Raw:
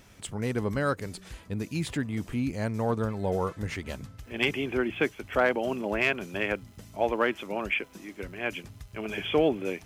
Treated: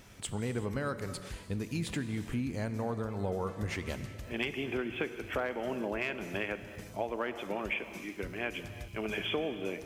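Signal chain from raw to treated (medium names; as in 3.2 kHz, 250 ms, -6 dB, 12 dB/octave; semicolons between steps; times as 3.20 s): compression, threshold -31 dBFS, peak gain reduction 12 dB; reverberation, pre-delay 3 ms, DRR 10 dB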